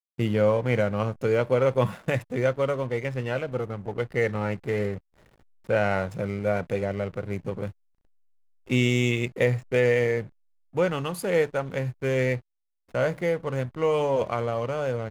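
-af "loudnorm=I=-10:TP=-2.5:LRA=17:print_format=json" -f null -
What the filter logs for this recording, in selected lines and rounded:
"input_i" : "-26.5",
"input_tp" : "-9.0",
"input_lra" : "3.1",
"input_thresh" : "-36.8",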